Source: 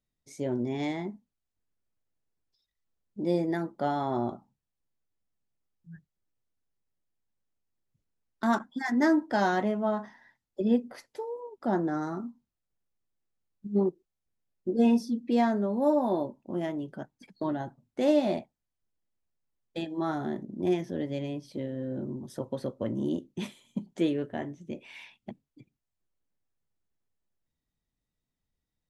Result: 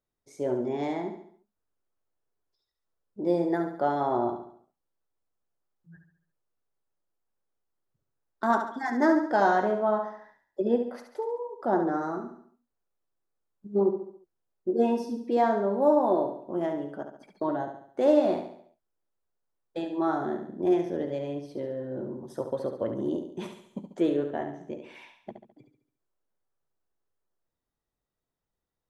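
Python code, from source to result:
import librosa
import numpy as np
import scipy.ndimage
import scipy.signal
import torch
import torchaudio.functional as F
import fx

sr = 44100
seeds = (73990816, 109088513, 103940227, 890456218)

y = fx.band_shelf(x, sr, hz=720.0, db=9.0, octaves=2.5)
y = fx.echo_feedback(y, sr, ms=70, feedback_pct=46, wet_db=-7.5)
y = y * librosa.db_to_amplitude(-5.0)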